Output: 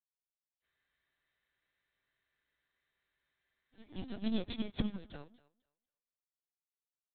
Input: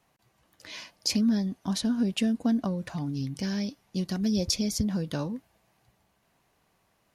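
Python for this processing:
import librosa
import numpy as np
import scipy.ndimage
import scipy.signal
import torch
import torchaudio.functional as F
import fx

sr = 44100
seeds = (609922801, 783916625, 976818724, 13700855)

p1 = fx.high_shelf(x, sr, hz=2200.0, db=10.5)
p2 = fx.power_curve(p1, sr, exponent=1.4)
p3 = fx.echo_pitch(p2, sr, ms=454, semitones=3, count=3, db_per_echo=-6.0)
p4 = p3 + fx.echo_thinned(p3, sr, ms=246, feedback_pct=28, hz=310.0, wet_db=-6, dry=0)
p5 = fx.lpc_vocoder(p4, sr, seeds[0], excitation='pitch_kept', order=16)
p6 = fx.spec_freeze(p5, sr, seeds[1], at_s=0.65, hold_s=3.07)
p7 = fx.upward_expand(p6, sr, threshold_db=-50.0, expansion=2.5)
y = p7 * 10.0 ** (1.5 / 20.0)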